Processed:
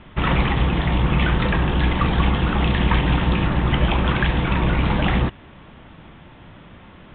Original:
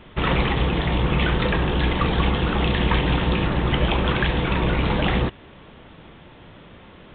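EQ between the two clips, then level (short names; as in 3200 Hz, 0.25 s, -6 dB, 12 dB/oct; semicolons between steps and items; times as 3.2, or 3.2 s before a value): air absorption 200 m; bell 450 Hz -6 dB 0.79 oct; +3.0 dB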